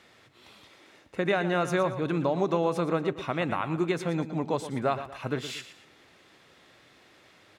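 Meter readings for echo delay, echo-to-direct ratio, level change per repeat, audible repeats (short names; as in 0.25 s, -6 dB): 0.117 s, -11.5 dB, -9.0 dB, 2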